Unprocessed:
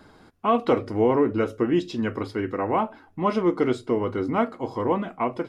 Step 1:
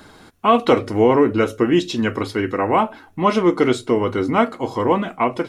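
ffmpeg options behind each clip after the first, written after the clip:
-af "highshelf=f=2300:g=9,bandreject=f=4900:w=12,volume=1.88"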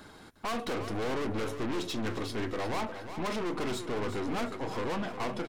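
-af "aeval=exprs='(tanh(22.4*val(0)+0.45)-tanh(0.45))/22.4':c=same,aecho=1:1:356|712|1068|1424:0.316|0.126|0.0506|0.0202,volume=0.596"

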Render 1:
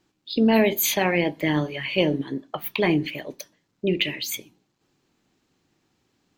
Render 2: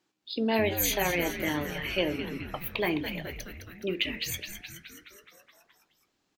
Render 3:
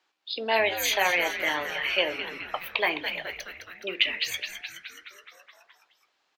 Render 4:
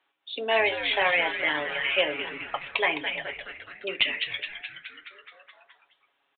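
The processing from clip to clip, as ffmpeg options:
-filter_complex "[0:a]highpass=f=360:p=1,asplit=2[s0][s1];[s1]asplit=8[s2][s3][s4][s5][s6][s7][s8][s9];[s2]adelay=211,afreqshift=-130,volume=0.355[s10];[s3]adelay=422,afreqshift=-260,volume=0.226[s11];[s4]adelay=633,afreqshift=-390,volume=0.145[s12];[s5]adelay=844,afreqshift=-520,volume=0.0933[s13];[s6]adelay=1055,afreqshift=-650,volume=0.0596[s14];[s7]adelay=1266,afreqshift=-780,volume=0.038[s15];[s8]adelay=1477,afreqshift=-910,volume=0.0243[s16];[s9]adelay=1688,afreqshift=-1040,volume=0.0157[s17];[s10][s11][s12][s13][s14][s15][s16][s17]amix=inputs=8:normalize=0[s18];[s0][s18]amix=inputs=2:normalize=0,volume=0.562"
-filter_complex "[0:a]acrossover=split=540 5100:gain=0.0708 1 0.224[s0][s1][s2];[s0][s1][s2]amix=inputs=3:normalize=0,volume=2.24"
-af "aecho=1:1:7.2:0.49,aresample=8000,volume=4.47,asoftclip=hard,volume=0.224,aresample=44100"

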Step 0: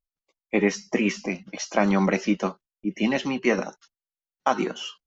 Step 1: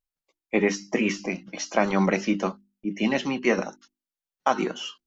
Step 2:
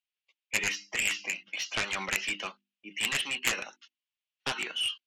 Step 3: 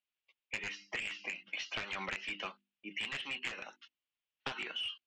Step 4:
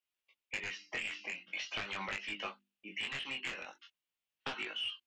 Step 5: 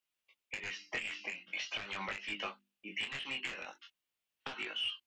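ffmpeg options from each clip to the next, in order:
-af "bandreject=f=50:t=h:w=6,bandreject=f=100:t=h:w=6,bandreject=f=150:t=h:w=6,bandreject=f=200:t=h:w=6,bandreject=f=250:t=h:w=6,bandreject=f=300:t=h:w=6,bandreject=f=350:t=h:w=6"
-af "bandpass=f=2800:t=q:w=3.2:csg=0,aeval=exprs='0.141*(cos(1*acos(clip(val(0)/0.141,-1,1)))-cos(1*PI/2))+0.0562*(cos(7*acos(clip(val(0)/0.141,-1,1)))-cos(7*PI/2))':c=same,volume=1.78"
-af "acompressor=threshold=0.0178:ratio=10,lowpass=3900"
-af "flanger=delay=19:depth=4:speed=0.43,volume=1.41"
-af "alimiter=level_in=1.88:limit=0.0631:level=0:latency=1:release=228,volume=0.531,volume=1.26"

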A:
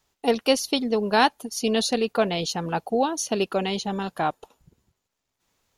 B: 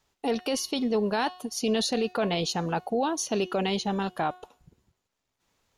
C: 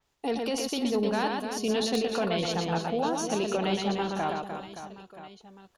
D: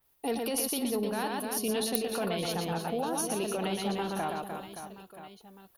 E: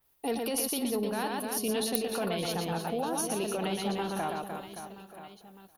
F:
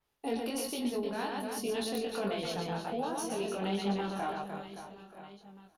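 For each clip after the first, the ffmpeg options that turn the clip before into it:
-af "highshelf=f=8200:g=-6.5,bandreject=f=364.3:t=h:w=4,bandreject=f=728.6:t=h:w=4,bandreject=f=1092.9:t=h:w=4,bandreject=f=1457.2:t=h:w=4,bandreject=f=1821.5:t=h:w=4,bandreject=f=2185.8:t=h:w=4,bandreject=f=2550.1:t=h:w=4,bandreject=f=2914.4:t=h:w=4,bandreject=f=3278.7:t=h:w=4,bandreject=f=3643:t=h:w=4,bandreject=f=4007.3:t=h:w=4,bandreject=f=4371.6:t=h:w=4,bandreject=f=4735.9:t=h:w=4,bandreject=f=5100.2:t=h:w=4,bandreject=f=5464.5:t=h:w=4,bandreject=f=5828.8:t=h:w=4,bandreject=f=6193.1:t=h:w=4,bandreject=f=6557.4:t=h:w=4,bandreject=f=6921.7:t=h:w=4,bandreject=f=7286:t=h:w=4,bandreject=f=7650.3:t=h:w=4,alimiter=limit=0.126:level=0:latency=1:release=22"
-af "aecho=1:1:120|300|570|975|1582:0.631|0.398|0.251|0.158|0.1,aeval=exprs='(mod(4.47*val(0)+1,2)-1)/4.47':c=same,adynamicequalizer=threshold=0.00891:dfrequency=4600:dqfactor=0.7:tfrequency=4600:tqfactor=0.7:attack=5:release=100:ratio=0.375:range=2:mode=cutabove:tftype=highshelf,volume=0.75"
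-af "alimiter=limit=0.0944:level=0:latency=1:release=116,aexciter=amount=10.8:drive=5.3:freq=9800,volume=0.794"
-af "aecho=1:1:921:0.0708"
-filter_complex "[0:a]asplit=2[s0][s1];[s1]adelay=25,volume=0.282[s2];[s0][s2]amix=inputs=2:normalize=0,adynamicsmooth=sensitivity=4.5:basefreq=7700,flanger=delay=20:depth=2.3:speed=1.3"

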